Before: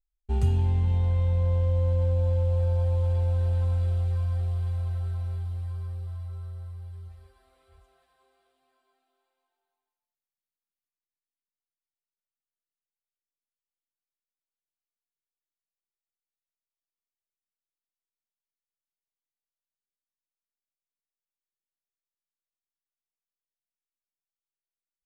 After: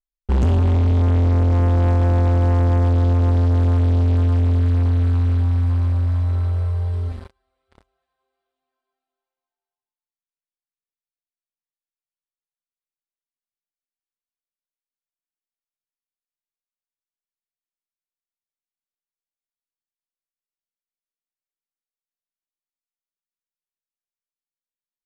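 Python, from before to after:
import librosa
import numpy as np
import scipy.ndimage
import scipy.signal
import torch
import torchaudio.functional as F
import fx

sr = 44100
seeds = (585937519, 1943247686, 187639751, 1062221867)

y = fx.hum_notches(x, sr, base_hz=50, count=2)
y = fx.leveller(y, sr, passes=5)
y = fx.air_absorb(y, sr, metres=56.0)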